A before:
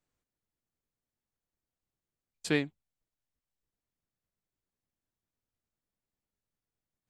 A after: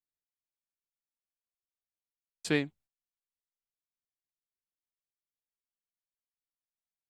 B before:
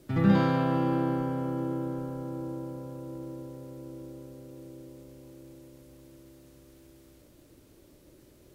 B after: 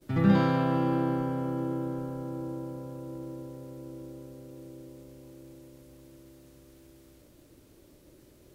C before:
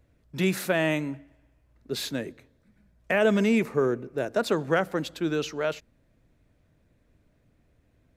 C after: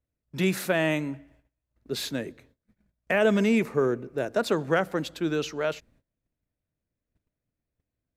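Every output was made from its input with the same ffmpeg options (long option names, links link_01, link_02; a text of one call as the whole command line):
ffmpeg -i in.wav -af "agate=range=-21dB:threshold=-59dB:ratio=16:detection=peak" out.wav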